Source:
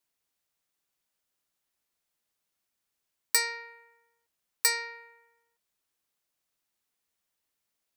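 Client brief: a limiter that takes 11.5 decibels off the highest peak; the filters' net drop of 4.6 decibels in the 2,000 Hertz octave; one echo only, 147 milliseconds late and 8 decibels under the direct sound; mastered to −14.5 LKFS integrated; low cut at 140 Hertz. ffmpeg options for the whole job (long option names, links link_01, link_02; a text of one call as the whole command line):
ffmpeg -i in.wav -af "highpass=140,equalizer=frequency=2000:width_type=o:gain=-5,alimiter=limit=-21dB:level=0:latency=1,aecho=1:1:147:0.398,volume=20.5dB" out.wav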